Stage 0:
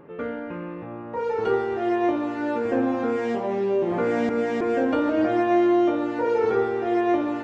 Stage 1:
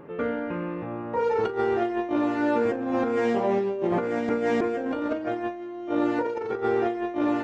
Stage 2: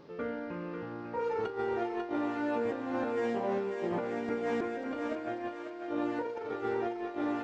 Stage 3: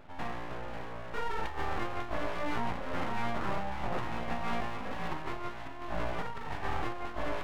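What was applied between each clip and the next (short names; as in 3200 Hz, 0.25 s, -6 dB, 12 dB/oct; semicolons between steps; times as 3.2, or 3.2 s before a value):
negative-ratio compressor -25 dBFS, ratio -0.5
thinning echo 0.545 s, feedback 51%, high-pass 760 Hz, level -4.5 dB; band noise 2000–5200 Hz -64 dBFS; gain -8.5 dB
downsampling 8000 Hz; full-wave rectifier; gain +2 dB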